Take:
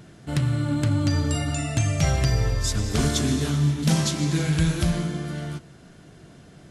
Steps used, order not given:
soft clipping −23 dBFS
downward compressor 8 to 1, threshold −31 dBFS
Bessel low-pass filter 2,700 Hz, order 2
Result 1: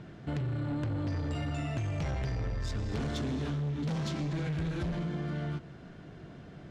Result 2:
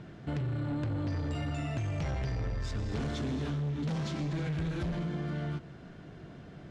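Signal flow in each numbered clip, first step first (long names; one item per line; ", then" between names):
Bessel low-pass filter, then soft clipping, then downward compressor
soft clipping, then downward compressor, then Bessel low-pass filter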